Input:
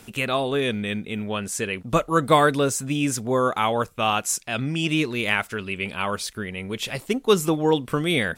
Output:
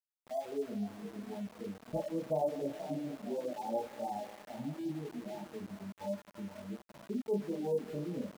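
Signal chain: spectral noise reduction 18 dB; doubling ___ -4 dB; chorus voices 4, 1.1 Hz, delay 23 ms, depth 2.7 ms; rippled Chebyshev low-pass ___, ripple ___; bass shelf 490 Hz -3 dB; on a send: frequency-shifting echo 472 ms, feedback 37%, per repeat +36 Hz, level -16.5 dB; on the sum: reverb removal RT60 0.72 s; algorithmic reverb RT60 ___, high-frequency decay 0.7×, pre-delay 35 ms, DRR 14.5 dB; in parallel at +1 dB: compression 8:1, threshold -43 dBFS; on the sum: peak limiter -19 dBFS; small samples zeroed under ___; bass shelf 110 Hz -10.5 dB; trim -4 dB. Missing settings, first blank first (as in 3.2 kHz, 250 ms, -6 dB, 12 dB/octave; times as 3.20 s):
40 ms, 880 Hz, 9 dB, 3.7 s, -43 dBFS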